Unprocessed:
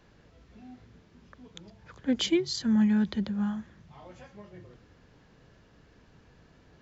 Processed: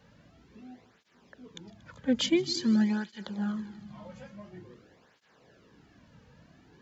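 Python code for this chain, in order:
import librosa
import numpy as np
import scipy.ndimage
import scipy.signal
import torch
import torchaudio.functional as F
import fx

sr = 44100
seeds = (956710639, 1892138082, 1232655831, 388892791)

y = fx.echo_heads(x, sr, ms=78, heads='second and third', feedback_pct=65, wet_db=-21.5)
y = fx.flanger_cancel(y, sr, hz=0.48, depth_ms=3.0)
y = y * 10.0 ** (3.0 / 20.0)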